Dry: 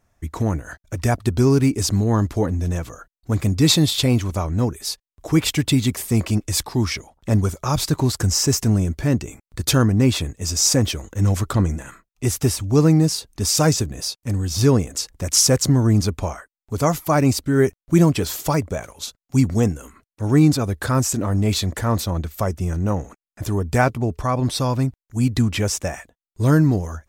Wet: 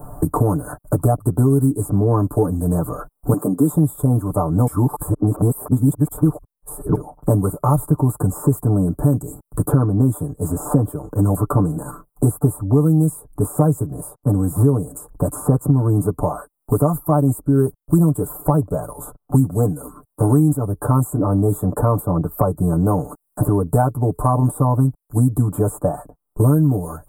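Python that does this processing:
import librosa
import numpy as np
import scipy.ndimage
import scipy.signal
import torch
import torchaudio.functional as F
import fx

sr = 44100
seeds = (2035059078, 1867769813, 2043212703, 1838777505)

y = fx.highpass(x, sr, hz=200.0, slope=24, at=(3.33, 3.73))
y = fx.edit(y, sr, fx.reverse_span(start_s=4.67, length_s=2.28), tone=tone)
y = scipy.signal.sosfilt(scipy.signal.cheby2(4, 40, [1900.0, 6100.0], 'bandstop', fs=sr, output='sos'), y)
y = y + 0.82 * np.pad(y, (int(6.8 * sr / 1000.0), 0))[:len(y)]
y = fx.band_squash(y, sr, depth_pct=100)
y = y * 10.0 ** (-1.0 / 20.0)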